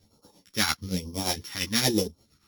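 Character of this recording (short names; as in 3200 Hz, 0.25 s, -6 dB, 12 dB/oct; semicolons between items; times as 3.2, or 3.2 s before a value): a buzz of ramps at a fixed pitch in blocks of 8 samples; phasing stages 2, 1.1 Hz, lowest notch 540–1900 Hz; tremolo triangle 8.7 Hz, depth 75%; a shimmering, thickened sound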